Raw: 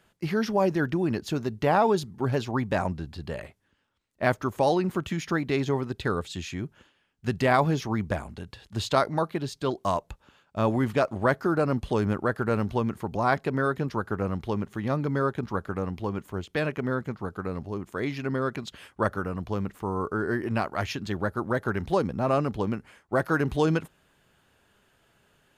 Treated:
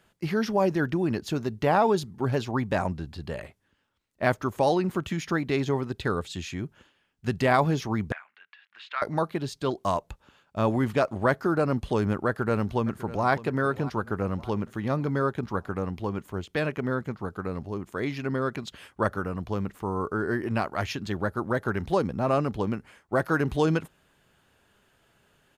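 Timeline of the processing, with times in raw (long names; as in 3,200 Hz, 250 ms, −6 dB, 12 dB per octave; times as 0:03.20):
0:08.12–0:09.02: flat-topped band-pass 1,900 Hz, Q 1.4
0:12.26–0:13.29: delay throw 600 ms, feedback 50%, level −16.5 dB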